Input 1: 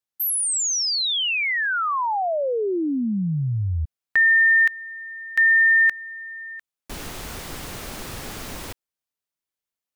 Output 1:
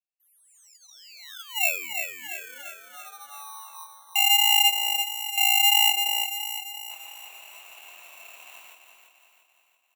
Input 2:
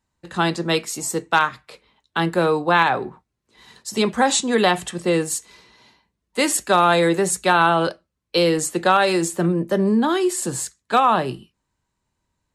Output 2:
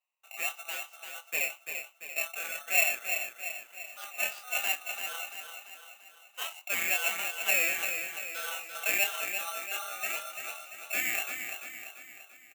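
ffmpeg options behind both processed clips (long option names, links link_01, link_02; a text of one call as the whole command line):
ffmpeg -i in.wav -filter_complex "[0:a]lowpass=frequency=1700:width_type=q:width=14,equalizer=frequency=890:width=0.33:gain=-3.5,dynaudnorm=framelen=340:gausssize=17:maxgain=11.5dB,flanger=delay=20:depth=7.1:speed=1.5,aeval=exprs='val(0)*sin(2*PI*1000*n/s)':channel_layout=same,asplit=2[link_01][link_02];[link_02]acrusher=samples=9:mix=1:aa=0.000001,volume=-7dB[link_03];[link_01][link_03]amix=inputs=2:normalize=0,aderivative,asplit=2[link_04][link_05];[link_05]aecho=0:1:341|682|1023|1364|1705|2046:0.447|0.228|0.116|0.0593|0.0302|0.0154[link_06];[link_04][link_06]amix=inputs=2:normalize=0" out.wav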